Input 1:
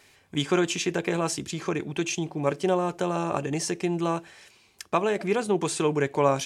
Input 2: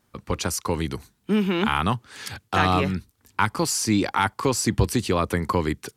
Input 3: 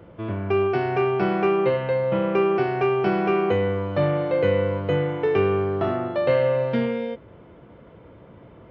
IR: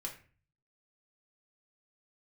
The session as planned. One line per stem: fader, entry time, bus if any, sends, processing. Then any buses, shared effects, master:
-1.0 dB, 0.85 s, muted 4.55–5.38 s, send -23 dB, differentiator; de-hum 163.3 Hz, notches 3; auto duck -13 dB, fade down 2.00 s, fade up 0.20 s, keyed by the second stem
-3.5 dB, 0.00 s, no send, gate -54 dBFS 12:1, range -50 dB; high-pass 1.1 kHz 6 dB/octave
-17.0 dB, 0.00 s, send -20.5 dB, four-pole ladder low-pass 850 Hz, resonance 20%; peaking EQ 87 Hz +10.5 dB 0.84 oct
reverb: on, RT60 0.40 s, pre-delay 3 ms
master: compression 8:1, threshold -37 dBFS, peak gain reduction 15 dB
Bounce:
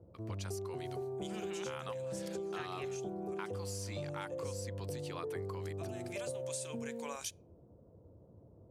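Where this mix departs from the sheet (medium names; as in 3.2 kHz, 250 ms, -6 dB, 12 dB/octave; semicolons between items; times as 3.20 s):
stem 2 -3.5 dB -> -13.0 dB; stem 3 -17.0 dB -> -10.5 dB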